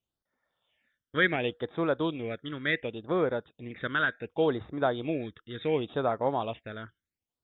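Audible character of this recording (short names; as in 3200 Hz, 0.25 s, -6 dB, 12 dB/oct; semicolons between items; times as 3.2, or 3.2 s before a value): phasing stages 12, 0.69 Hz, lowest notch 760–2900 Hz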